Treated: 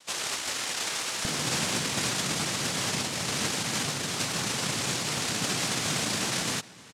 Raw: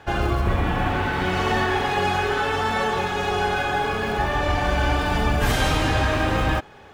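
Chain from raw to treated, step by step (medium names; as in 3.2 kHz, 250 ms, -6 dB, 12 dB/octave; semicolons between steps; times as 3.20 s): noise-vocoded speech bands 1; peaking EQ 150 Hz -5 dB 1.9 oct, from 1.25 s +12.5 dB; echo from a far wall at 53 m, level -20 dB; trim -8 dB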